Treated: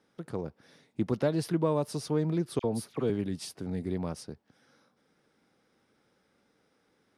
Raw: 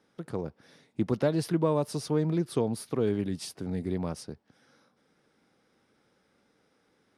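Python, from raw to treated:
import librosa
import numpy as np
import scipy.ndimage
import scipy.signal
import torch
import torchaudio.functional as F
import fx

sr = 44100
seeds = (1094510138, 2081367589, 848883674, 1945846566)

y = fx.dispersion(x, sr, late='lows', ms=51.0, hz=1900.0, at=(2.59, 3.1))
y = F.gain(torch.from_numpy(y), -1.5).numpy()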